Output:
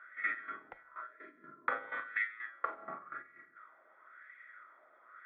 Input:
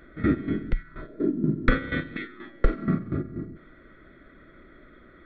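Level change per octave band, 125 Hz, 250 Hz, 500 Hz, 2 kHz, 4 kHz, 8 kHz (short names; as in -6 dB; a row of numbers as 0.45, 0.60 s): under -40 dB, -34.5 dB, -18.0 dB, -3.0 dB, -17.5 dB, n/a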